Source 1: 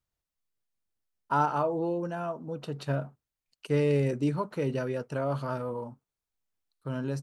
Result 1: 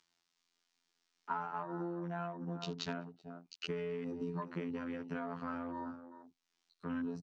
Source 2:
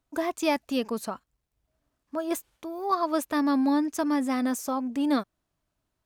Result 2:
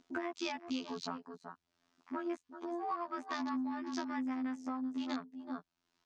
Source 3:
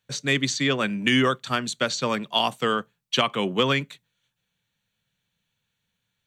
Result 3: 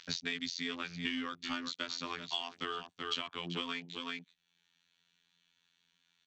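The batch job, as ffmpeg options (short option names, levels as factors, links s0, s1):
-filter_complex "[0:a]highshelf=f=3300:g=9,afftfilt=real='hypot(re,im)*cos(PI*b)':imag='0':win_size=2048:overlap=0.75,lowpass=f=5900:w=0.5412,lowpass=f=5900:w=1.3066,acrossover=split=200[s0][s1];[s1]acompressor=mode=upward:threshold=0.00708:ratio=2.5[s2];[s0][s2]amix=inputs=2:normalize=0,aeval=exprs='0.708*(cos(1*acos(clip(val(0)/0.708,-1,1)))-cos(1*PI/2))+0.00447*(cos(5*acos(clip(val(0)/0.708,-1,1)))-cos(5*PI/2))+0.00891*(cos(6*acos(clip(val(0)/0.708,-1,1)))-cos(6*PI/2))':c=same,aecho=1:1:379:0.2,acompressor=threshold=0.0141:ratio=12,afwtdn=0.00251,equalizer=f=540:w=3.3:g=-11,volume=1.5"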